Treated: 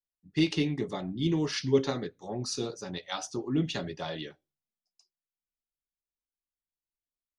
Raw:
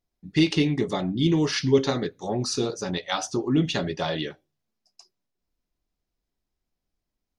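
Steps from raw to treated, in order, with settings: three-band expander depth 40%; gain -7 dB

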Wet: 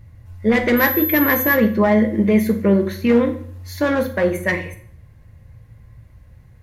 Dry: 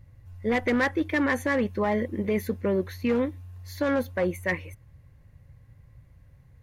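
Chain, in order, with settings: 0.76–1.54 whine 12000 Hz -31 dBFS; on a send: reverb RT60 0.55 s, pre-delay 5 ms, DRR 4.5 dB; on the sum: gain +7 dB

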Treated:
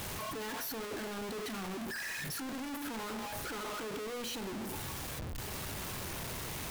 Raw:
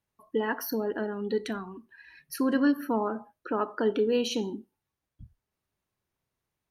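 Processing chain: infinite clipping; de-hum 58.84 Hz, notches 36; gain -8 dB

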